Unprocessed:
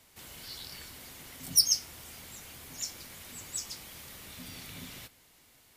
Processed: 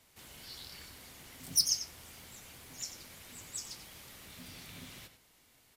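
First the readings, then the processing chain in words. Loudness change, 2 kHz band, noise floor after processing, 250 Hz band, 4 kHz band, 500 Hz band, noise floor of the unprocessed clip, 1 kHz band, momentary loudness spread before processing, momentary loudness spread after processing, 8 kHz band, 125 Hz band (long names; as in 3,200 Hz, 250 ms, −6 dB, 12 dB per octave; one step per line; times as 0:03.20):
−4.5 dB, −3.5 dB, −66 dBFS, −4.0 dB, −4.5 dB, −3.5 dB, −62 dBFS, −3.5 dB, 20 LU, 20 LU, −4.0 dB, −3.5 dB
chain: slap from a distant wall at 16 metres, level −10 dB
highs frequency-modulated by the lows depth 0.24 ms
level −4 dB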